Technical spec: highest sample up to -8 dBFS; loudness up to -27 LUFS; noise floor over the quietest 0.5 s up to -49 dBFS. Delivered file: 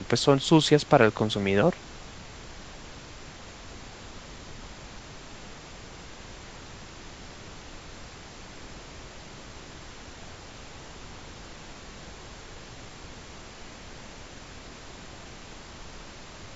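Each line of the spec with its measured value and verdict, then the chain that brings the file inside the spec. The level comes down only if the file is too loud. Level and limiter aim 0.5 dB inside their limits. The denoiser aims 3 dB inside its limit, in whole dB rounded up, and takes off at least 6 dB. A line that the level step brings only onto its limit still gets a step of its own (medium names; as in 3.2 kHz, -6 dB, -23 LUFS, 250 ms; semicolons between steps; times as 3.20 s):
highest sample -2.5 dBFS: fail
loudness -22.5 LUFS: fail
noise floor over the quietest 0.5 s -44 dBFS: fail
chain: noise reduction 6 dB, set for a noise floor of -44 dBFS; trim -5 dB; peak limiter -8.5 dBFS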